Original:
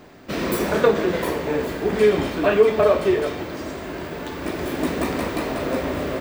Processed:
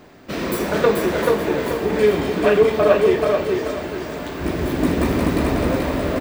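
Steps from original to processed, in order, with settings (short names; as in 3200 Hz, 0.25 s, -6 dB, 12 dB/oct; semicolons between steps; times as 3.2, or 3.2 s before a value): 4.41–5.76 low shelf 220 Hz +11.5 dB; feedback echo 0.434 s, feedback 30%, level -3 dB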